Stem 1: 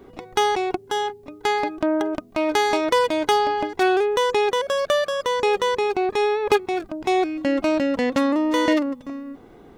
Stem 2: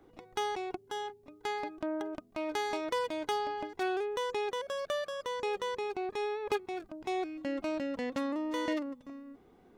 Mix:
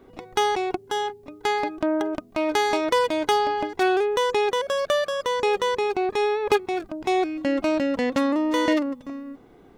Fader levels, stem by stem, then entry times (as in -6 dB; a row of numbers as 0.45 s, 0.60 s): -5.5 dB, +2.0 dB; 0.00 s, 0.00 s